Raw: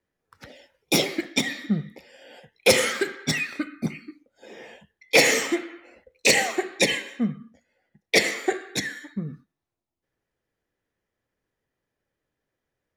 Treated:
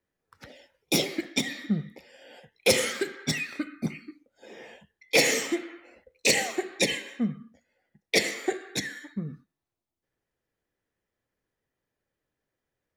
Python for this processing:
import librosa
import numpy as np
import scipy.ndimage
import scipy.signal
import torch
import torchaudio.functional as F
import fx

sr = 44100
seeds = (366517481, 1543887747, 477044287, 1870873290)

y = fx.dynamic_eq(x, sr, hz=1200.0, q=0.72, threshold_db=-33.0, ratio=4.0, max_db=-5)
y = F.gain(torch.from_numpy(y), -2.5).numpy()